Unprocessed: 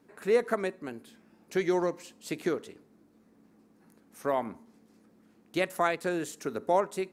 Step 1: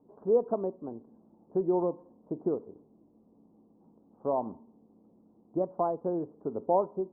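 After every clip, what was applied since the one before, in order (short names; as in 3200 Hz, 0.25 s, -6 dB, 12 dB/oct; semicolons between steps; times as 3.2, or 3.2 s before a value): steep low-pass 1000 Hz 48 dB/oct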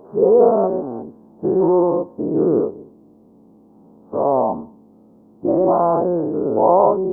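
spectral dilation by 0.24 s; gain +7.5 dB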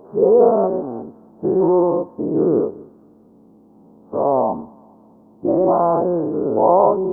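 thin delay 0.208 s, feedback 55%, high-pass 1400 Hz, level -17 dB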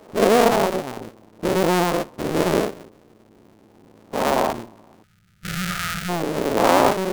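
cycle switcher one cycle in 2, muted; spectral gain 5.03–6.09, 210–1200 Hz -25 dB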